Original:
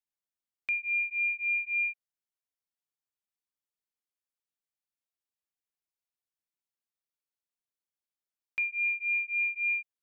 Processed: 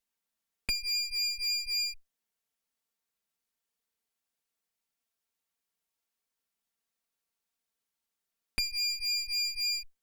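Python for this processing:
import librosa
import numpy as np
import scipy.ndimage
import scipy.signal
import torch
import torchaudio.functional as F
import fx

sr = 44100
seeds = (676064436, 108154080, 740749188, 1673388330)

y = fx.lower_of_two(x, sr, delay_ms=4.4)
y = fx.clip_asym(y, sr, top_db=-41.0, bottom_db=-29.5)
y = y * 10.0 ** (8.0 / 20.0)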